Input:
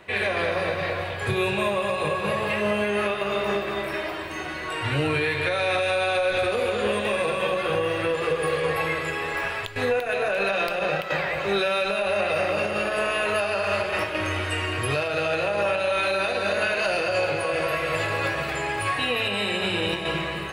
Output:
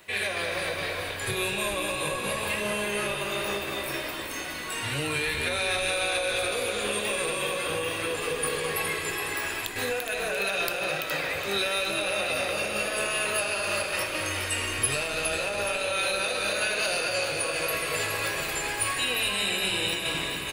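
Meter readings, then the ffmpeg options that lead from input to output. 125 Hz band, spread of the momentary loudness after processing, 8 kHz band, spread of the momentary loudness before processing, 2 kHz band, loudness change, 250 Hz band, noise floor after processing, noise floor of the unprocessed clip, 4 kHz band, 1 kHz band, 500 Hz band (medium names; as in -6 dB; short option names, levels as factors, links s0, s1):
-7.0 dB, 4 LU, +11.0 dB, 4 LU, -2.0 dB, -2.5 dB, -6.0 dB, -34 dBFS, -31 dBFS, +1.5 dB, -5.5 dB, -6.5 dB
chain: -filter_complex "[0:a]highshelf=f=3400:g=7.5,crystalizer=i=2.5:c=0,asplit=7[s0][s1][s2][s3][s4][s5][s6];[s1]adelay=416,afreqshift=-64,volume=0.447[s7];[s2]adelay=832,afreqshift=-128,volume=0.214[s8];[s3]adelay=1248,afreqshift=-192,volume=0.102[s9];[s4]adelay=1664,afreqshift=-256,volume=0.0495[s10];[s5]adelay=2080,afreqshift=-320,volume=0.0237[s11];[s6]adelay=2496,afreqshift=-384,volume=0.0114[s12];[s0][s7][s8][s9][s10][s11][s12]amix=inputs=7:normalize=0,volume=0.398"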